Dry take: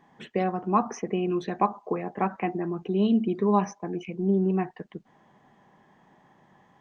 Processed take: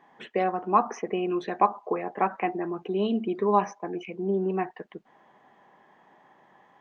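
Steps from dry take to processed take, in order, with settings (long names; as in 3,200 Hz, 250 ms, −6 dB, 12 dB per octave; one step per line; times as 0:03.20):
bass and treble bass −14 dB, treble −8 dB
level +3 dB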